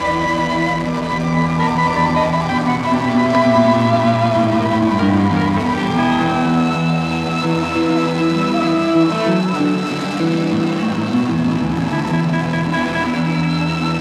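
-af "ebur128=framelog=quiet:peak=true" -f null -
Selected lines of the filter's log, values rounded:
Integrated loudness:
  I:         -16.3 LUFS
  Threshold: -26.3 LUFS
Loudness range:
  LRA:         3.1 LU
  Threshold: -36.1 LUFS
  LRA low:   -17.8 LUFS
  LRA high:  -14.7 LUFS
True peak:
  Peak:       -1.6 dBFS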